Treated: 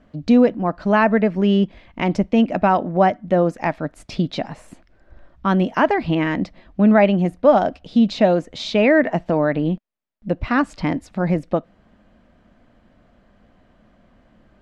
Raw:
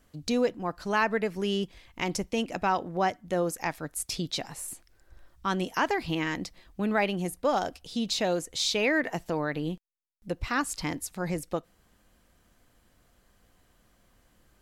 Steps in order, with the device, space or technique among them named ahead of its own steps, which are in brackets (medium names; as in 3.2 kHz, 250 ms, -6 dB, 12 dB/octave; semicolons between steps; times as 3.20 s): inside a cardboard box (low-pass 2.7 kHz 12 dB/octave; small resonant body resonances 220/610 Hz, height 9 dB, ringing for 25 ms); trim +7 dB